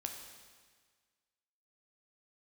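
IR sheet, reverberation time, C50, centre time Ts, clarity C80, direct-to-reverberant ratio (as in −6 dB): 1.6 s, 5.5 dB, 42 ms, 6.5 dB, 3.0 dB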